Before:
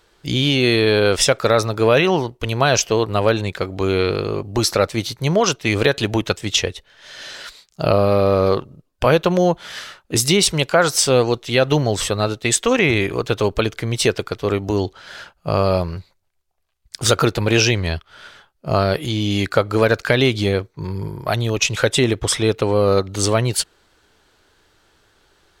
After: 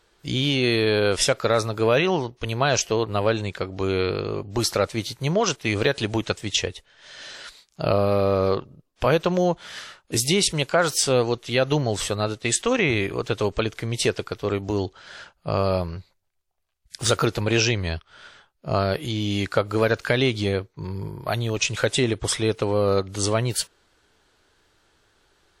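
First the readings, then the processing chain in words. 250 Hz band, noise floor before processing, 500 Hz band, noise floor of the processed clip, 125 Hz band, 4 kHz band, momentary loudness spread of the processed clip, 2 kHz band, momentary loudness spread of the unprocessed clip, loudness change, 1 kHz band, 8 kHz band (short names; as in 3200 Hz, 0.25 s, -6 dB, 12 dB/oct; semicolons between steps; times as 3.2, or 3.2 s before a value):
-5.0 dB, -64 dBFS, -5.0 dB, -67 dBFS, -5.0 dB, -5.0 dB, 11 LU, -5.0 dB, 11 LU, -5.0 dB, -5.0 dB, -5.0 dB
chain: gain -5 dB; WMA 64 kbps 44100 Hz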